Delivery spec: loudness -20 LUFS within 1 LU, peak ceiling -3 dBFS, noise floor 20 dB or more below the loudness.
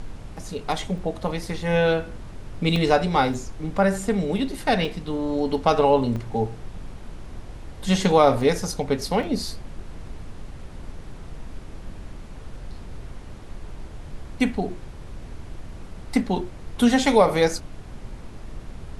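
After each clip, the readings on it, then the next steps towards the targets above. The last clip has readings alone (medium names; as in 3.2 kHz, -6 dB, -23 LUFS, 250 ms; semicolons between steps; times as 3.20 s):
dropouts 7; longest dropout 2.6 ms; noise floor -39 dBFS; noise floor target -43 dBFS; loudness -23.0 LUFS; peak level -4.0 dBFS; loudness target -20.0 LUFS
-> interpolate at 0.98/2.76/3.34/4.85/6.16/8.41/9.23 s, 2.6 ms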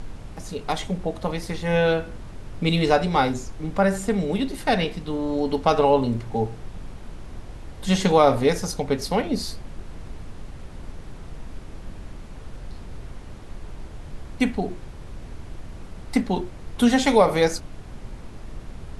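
dropouts 0; noise floor -39 dBFS; noise floor target -43 dBFS
-> noise print and reduce 6 dB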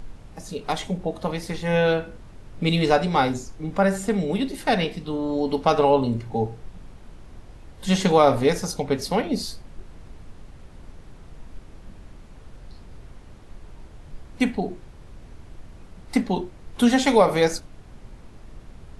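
noise floor -45 dBFS; loudness -23.0 LUFS; peak level -4.5 dBFS; loudness target -20.0 LUFS
-> trim +3 dB; peak limiter -3 dBFS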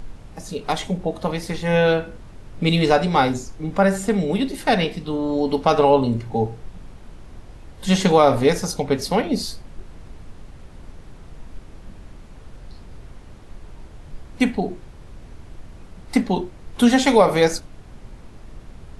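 loudness -20.0 LUFS; peak level -3.0 dBFS; noise floor -42 dBFS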